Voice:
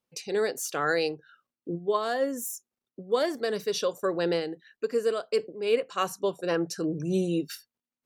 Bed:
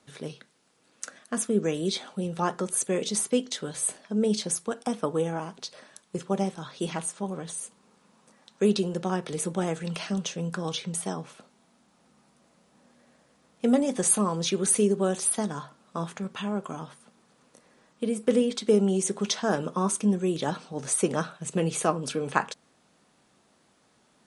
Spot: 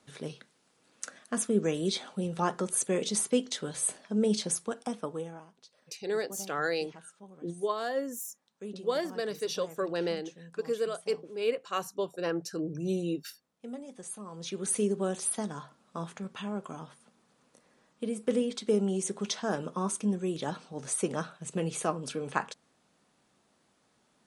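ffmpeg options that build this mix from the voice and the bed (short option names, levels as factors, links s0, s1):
-filter_complex "[0:a]adelay=5750,volume=0.596[s0];[1:a]volume=3.76,afade=t=out:st=4.5:d=0.97:silence=0.141254,afade=t=in:st=14.24:d=0.6:silence=0.211349[s1];[s0][s1]amix=inputs=2:normalize=0"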